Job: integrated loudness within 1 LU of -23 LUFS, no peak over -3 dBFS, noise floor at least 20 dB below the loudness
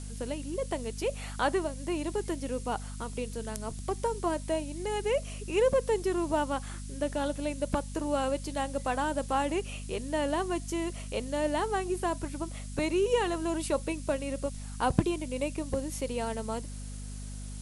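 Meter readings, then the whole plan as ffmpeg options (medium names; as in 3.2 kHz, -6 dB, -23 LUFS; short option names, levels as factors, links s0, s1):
hum 50 Hz; highest harmonic 250 Hz; hum level -38 dBFS; noise floor -40 dBFS; noise floor target -52 dBFS; loudness -32.0 LUFS; peak level -9.5 dBFS; loudness target -23.0 LUFS
-> -af "bandreject=f=50:t=h:w=4,bandreject=f=100:t=h:w=4,bandreject=f=150:t=h:w=4,bandreject=f=200:t=h:w=4,bandreject=f=250:t=h:w=4"
-af "afftdn=nr=12:nf=-40"
-af "volume=2.82,alimiter=limit=0.708:level=0:latency=1"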